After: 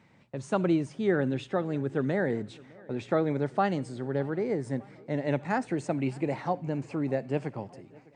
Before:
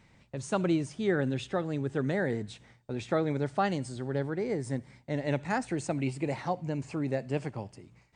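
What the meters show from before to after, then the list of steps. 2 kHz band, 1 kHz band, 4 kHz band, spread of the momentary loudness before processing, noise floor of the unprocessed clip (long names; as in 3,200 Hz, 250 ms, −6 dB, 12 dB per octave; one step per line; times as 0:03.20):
+0.5 dB, +2.0 dB, −3.0 dB, 10 LU, −62 dBFS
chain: high-pass filter 130 Hz 12 dB per octave
high-shelf EQ 3,300 Hz −10 dB
tape delay 609 ms, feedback 67%, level −23.5 dB, low-pass 4,900 Hz
level +2.5 dB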